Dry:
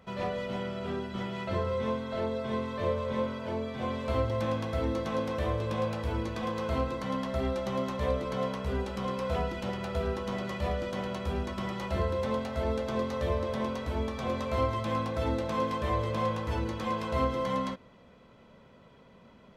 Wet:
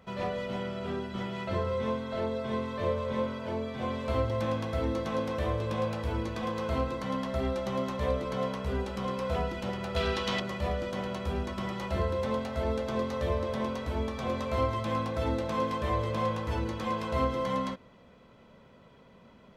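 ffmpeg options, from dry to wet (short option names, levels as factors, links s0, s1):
-filter_complex "[0:a]asettb=1/sr,asplit=3[s0][s1][s2];[s0]atrim=end=9.964[s3];[s1]atrim=start=9.96:end=10.4,asetpts=PTS-STARTPTS,afade=t=in:d=0.004:c=qsin,afade=t=out:st=0.436:d=0.004:c=qsin,equalizer=f=3600:w=0.51:g=14[s4];[s2]atrim=start=10.396[s5];[s3][s4]acrossfade=d=0.004:c1=hsin:c2=qsin[s6];[s6][s5]acrossfade=d=0.004:c1=qsin:c2=hsin"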